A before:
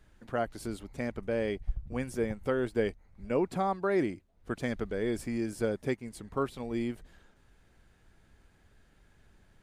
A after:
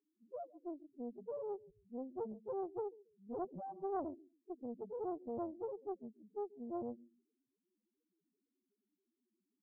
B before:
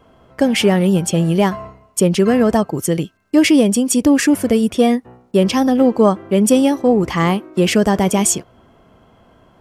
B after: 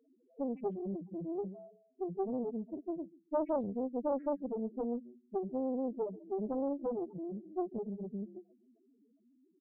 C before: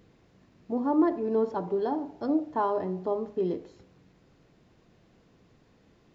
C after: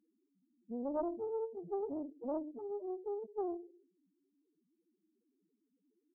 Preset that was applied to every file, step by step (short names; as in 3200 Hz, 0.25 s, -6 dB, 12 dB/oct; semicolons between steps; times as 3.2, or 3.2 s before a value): gate -39 dBFS, range -6 dB; compressor 3:1, threshold -31 dBFS; ladder band-pass 370 Hz, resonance 25%; loudest bins only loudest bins 1; feedback echo 0.139 s, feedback 18%, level -20 dB; Doppler distortion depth 1 ms; gain +12 dB